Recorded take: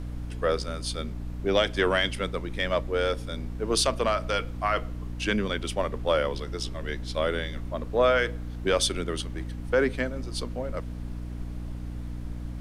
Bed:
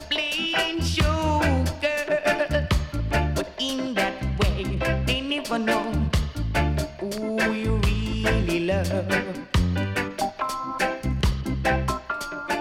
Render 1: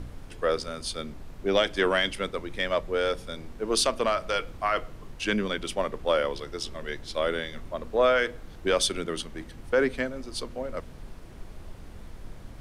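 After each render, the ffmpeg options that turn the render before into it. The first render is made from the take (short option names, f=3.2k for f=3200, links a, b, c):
-af "bandreject=f=60:t=h:w=4,bandreject=f=120:t=h:w=4,bandreject=f=180:t=h:w=4,bandreject=f=240:t=h:w=4,bandreject=f=300:t=h:w=4"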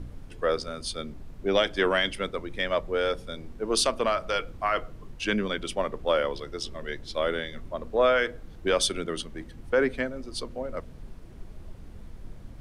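-af "afftdn=nr=6:nf=-45"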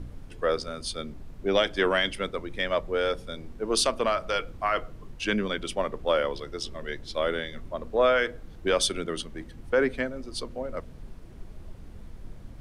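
-af anull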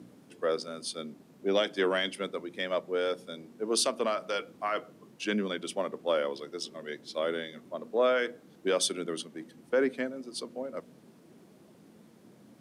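-af "highpass=f=190:w=0.5412,highpass=f=190:w=1.3066,equalizer=f=1.6k:w=0.33:g=-6"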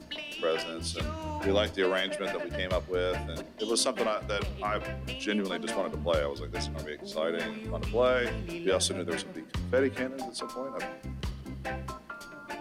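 -filter_complex "[1:a]volume=-13.5dB[a];[0:a][a]amix=inputs=2:normalize=0"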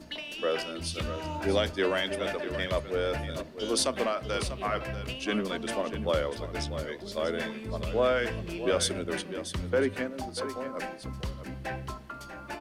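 -af "aecho=1:1:642:0.282"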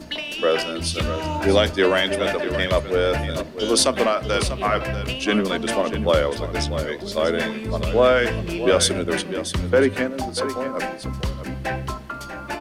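-af "volume=9.5dB"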